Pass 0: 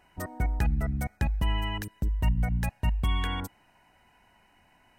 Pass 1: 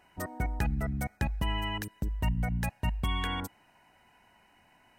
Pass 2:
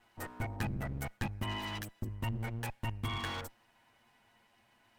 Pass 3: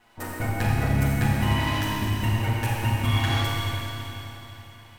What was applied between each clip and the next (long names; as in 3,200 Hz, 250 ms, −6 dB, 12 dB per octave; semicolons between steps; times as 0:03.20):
low-shelf EQ 70 Hz −8.5 dB
lower of the sound and its delayed copy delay 8.7 ms; level −3.5 dB
four-comb reverb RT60 3.5 s, combs from 29 ms, DRR −5 dB; level +7 dB